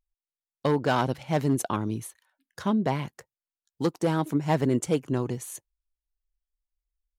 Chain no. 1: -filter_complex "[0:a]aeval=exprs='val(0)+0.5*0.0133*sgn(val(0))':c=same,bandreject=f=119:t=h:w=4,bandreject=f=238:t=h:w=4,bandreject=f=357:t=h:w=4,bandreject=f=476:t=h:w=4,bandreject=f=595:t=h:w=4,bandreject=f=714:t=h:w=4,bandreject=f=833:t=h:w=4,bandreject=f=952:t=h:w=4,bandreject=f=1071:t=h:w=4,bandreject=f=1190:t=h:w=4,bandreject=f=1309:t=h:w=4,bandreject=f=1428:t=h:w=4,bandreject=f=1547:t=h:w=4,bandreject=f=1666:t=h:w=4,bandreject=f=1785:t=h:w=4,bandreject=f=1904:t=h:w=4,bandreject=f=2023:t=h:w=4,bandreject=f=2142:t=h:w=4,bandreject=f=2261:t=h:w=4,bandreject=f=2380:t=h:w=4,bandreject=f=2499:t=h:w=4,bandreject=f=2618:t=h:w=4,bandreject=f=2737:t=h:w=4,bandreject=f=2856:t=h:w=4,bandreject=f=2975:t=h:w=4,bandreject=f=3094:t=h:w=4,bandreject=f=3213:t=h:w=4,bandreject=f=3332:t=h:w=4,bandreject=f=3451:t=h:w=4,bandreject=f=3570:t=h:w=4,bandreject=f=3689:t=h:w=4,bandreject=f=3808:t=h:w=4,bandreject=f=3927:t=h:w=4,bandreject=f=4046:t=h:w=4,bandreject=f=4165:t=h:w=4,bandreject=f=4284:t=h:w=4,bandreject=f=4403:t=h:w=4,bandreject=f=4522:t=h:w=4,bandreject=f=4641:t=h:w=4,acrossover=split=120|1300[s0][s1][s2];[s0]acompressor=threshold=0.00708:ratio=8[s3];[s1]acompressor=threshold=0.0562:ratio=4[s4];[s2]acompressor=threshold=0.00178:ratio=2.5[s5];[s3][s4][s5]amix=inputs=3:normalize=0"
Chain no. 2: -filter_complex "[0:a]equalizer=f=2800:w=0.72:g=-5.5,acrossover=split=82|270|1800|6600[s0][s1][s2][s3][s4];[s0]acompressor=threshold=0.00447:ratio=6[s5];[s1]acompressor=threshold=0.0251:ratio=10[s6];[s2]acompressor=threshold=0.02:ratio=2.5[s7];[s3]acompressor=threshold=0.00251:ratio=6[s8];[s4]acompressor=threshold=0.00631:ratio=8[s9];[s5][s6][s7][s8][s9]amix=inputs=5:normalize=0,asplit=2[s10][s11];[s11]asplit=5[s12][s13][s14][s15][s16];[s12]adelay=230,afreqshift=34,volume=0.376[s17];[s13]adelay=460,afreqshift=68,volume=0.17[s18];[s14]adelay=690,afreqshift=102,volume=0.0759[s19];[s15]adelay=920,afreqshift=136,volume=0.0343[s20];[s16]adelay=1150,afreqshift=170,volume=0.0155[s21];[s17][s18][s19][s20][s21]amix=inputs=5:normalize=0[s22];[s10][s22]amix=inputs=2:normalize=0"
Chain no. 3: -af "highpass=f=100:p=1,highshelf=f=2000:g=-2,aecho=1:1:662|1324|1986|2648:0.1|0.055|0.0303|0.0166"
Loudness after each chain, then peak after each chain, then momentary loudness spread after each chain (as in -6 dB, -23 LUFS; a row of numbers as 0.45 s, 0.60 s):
-31.0 LUFS, -33.0 LUFS, -28.5 LUFS; -15.5 dBFS, -17.0 dBFS, -12.0 dBFS; 17 LU, 15 LU, 21 LU